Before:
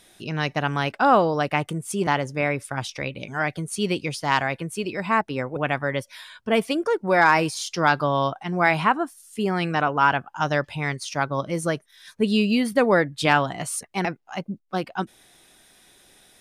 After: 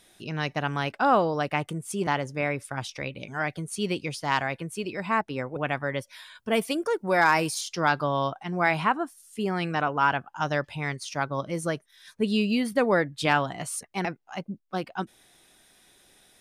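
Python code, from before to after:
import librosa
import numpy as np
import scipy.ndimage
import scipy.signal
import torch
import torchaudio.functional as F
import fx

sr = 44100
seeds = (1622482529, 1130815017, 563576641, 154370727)

y = fx.high_shelf(x, sr, hz=7900.0, db=11.5, at=(6.35, 7.61))
y = y * librosa.db_to_amplitude(-4.0)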